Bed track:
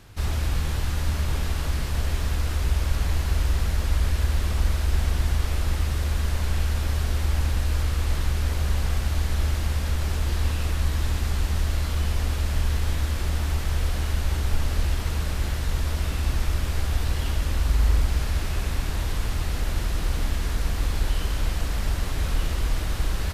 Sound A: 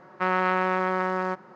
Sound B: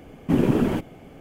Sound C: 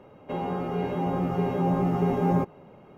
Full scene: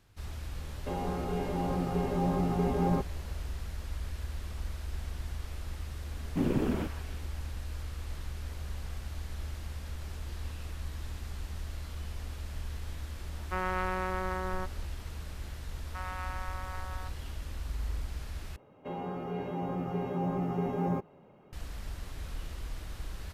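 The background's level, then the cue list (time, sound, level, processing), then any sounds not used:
bed track -15 dB
0.57 add C -5 dB
6.07 add B -9.5 dB + delay with a stepping band-pass 0.156 s, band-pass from 1300 Hz, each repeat 0.7 oct, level -4 dB
13.31 add A -9 dB
15.74 add A -15.5 dB + steep high-pass 600 Hz
18.56 replace with C -7.5 dB

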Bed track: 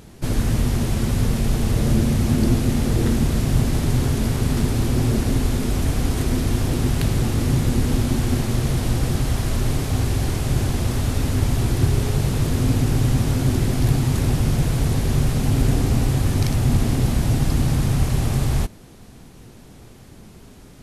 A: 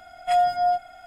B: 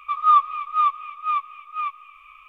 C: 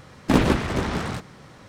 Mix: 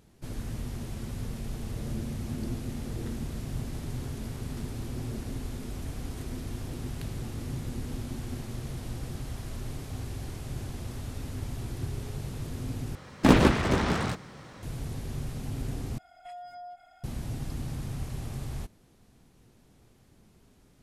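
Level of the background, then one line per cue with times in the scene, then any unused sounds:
bed track -16 dB
12.95 replace with C -0.5 dB
15.98 replace with A -11.5 dB + compressor 5:1, threshold -31 dBFS
not used: B

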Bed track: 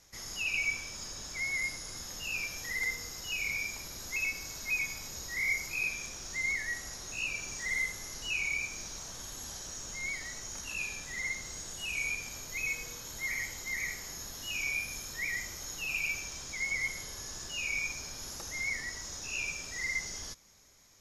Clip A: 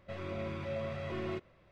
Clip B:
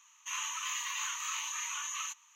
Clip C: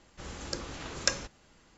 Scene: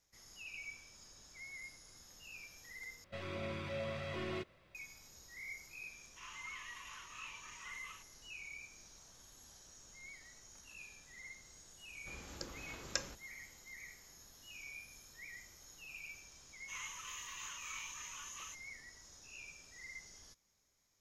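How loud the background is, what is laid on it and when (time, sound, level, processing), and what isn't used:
bed track -16.5 dB
3.04 replace with A -4.5 dB + high shelf 2100 Hz +10.5 dB
5.9 add B -11.5 dB + Bessel low-pass 2800 Hz
11.88 add C -10 dB
16.42 add B -11 dB

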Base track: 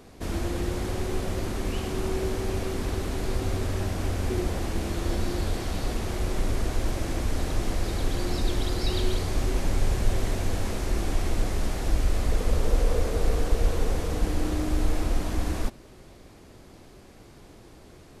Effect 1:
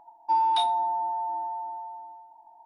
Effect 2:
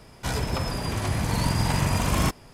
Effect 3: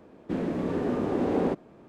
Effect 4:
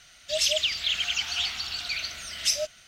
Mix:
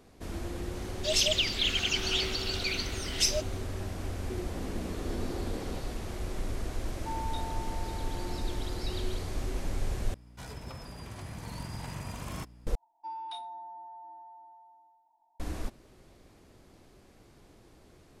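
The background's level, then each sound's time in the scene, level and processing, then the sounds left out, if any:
base track -8 dB
0.75 add 4 -2 dB
4.26 add 3 -5 dB + compressor, threshold -32 dBFS
6.77 add 1 -15.5 dB
10.14 replace with 2 -16 dB + hum 60 Hz, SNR 12 dB
12.75 replace with 1 -14.5 dB + bell 770 Hz -3 dB 1 oct

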